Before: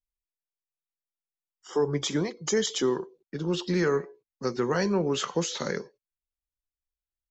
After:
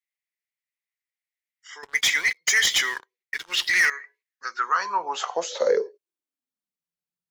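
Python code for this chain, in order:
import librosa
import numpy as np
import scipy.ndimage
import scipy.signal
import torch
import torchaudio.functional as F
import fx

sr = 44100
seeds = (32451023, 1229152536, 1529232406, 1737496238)

y = fx.filter_sweep_highpass(x, sr, from_hz=2000.0, to_hz=170.0, start_s=4.2, end_s=6.85, q=7.4)
y = fx.leveller(y, sr, passes=3, at=(1.83, 3.9))
y = y * librosa.db_to_amplitude(-1.0)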